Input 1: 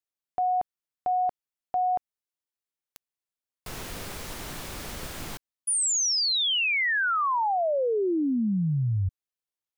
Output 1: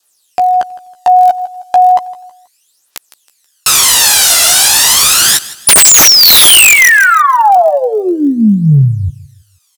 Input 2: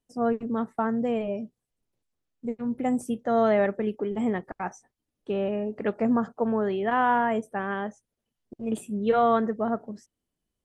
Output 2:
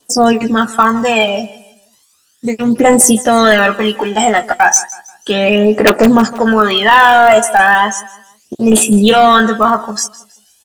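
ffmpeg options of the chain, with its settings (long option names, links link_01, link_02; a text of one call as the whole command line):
ffmpeg -i in.wav -filter_complex "[0:a]highpass=frequency=1300:poles=1,asplit=2[link_01][link_02];[link_02]acompressor=threshold=-41dB:ratio=4:attack=0.59:release=40:knee=6:detection=rms,volume=0dB[link_03];[link_01][link_03]amix=inputs=2:normalize=0,lowpass=8500,adynamicequalizer=threshold=0.00708:dfrequency=2000:dqfactor=2.2:tfrequency=2000:tqfactor=2.2:attack=5:release=100:ratio=0.375:range=2:mode=cutabove:tftype=bell,asplit=2[link_04][link_05];[link_05]adelay=14,volume=-5.5dB[link_06];[link_04][link_06]amix=inputs=2:normalize=0,acontrast=83,aphaser=in_gain=1:out_gain=1:delay=1.5:decay=0.68:speed=0.34:type=triangular,aemphasis=mode=production:type=75kf,bandreject=frequency=2200:width=8.3,aeval=exprs='(mod(1.68*val(0)+1,2)-1)/1.68':channel_layout=same,asplit=2[link_07][link_08];[link_08]aecho=0:1:161|322|483:0.112|0.0404|0.0145[link_09];[link_07][link_09]amix=inputs=2:normalize=0,apsyclip=16.5dB,volume=-2dB" out.wav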